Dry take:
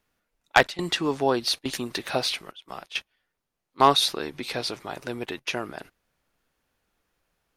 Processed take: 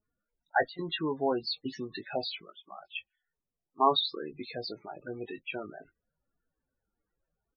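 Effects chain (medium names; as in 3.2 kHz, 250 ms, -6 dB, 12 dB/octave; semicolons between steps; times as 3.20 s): treble shelf 11 kHz -2.5 dB; loudest bins only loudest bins 16; doubling 19 ms -8.5 dB; trim -6 dB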